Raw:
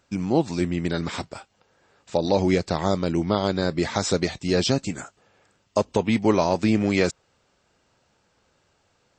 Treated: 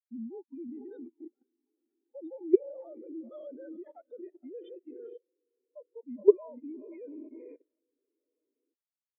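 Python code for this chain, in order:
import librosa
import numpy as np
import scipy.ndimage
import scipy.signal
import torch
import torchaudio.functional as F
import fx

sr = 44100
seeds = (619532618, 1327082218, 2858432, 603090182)

p1 = fx.sine_speech(x, sr)
p2 = p1 + fx.echo_diffused(p1, sr, ms=496, feedback_pct=48, wet_db=-7, dry=0)
p3 = fx.level_steps(p2, sr, step_db=15)
y = fx.spectral_expand(p3, sr, expansion=2.5)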